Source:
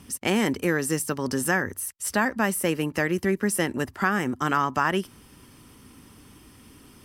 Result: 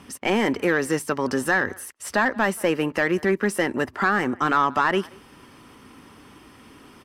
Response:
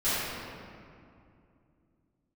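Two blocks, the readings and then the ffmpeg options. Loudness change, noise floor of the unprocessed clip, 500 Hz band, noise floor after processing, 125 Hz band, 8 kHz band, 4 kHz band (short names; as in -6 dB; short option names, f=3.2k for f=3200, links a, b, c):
+2.5 dB, -52 dBFS, +4.0 dB, -50 dBFS, -2.0 dB, -5.5 dB, +1.0 dB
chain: -filter_complex "[0:a]asplit=2[a][b];[b]adelay=180,highpass=300,lowpass=3.4k,asoftclip=type=hard:threshold=-16.5dB,volume=-26dB[c];[a][c]amix=inputs=2:normalize=0,asplit=2[d][e];[e]highpass=f=720:p=1,volume=15dB,asoftclip=type=tanh:threshold=-8dB[f];[d][f]amix=inputs=2:normalize=0,lowpass=f=1.4k:p=1,volume=-6dB,volume=1dB"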